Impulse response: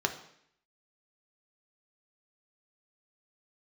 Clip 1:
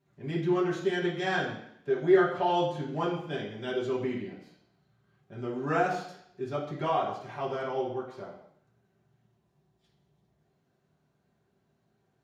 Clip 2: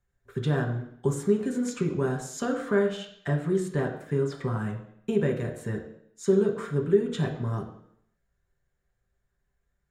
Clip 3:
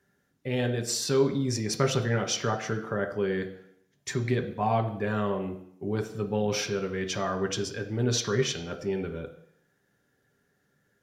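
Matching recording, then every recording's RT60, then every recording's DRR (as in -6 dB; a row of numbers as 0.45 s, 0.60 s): 3; 0.70 s, 0.70 s, 0.70 s; -8.5 dB, 0.0 dB, 4.0 dB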